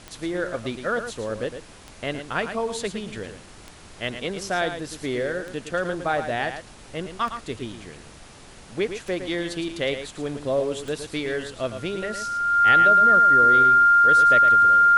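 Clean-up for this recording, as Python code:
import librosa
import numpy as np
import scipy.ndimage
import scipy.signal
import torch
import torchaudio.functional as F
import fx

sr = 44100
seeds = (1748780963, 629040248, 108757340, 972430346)

y = fx.fix_declick_ar(x, sr, threshold=10.0)
y = fx.notch(y, sr, hz=1400.0, q=30.0)
y = fx.noise_reduce(y, sr, print_start_s=8.19, print_end_s=8.69, reduce_db=20.0)
y = fx.fix_echo_inverse(y, sr, delay_ms=111, level_db=-9.0)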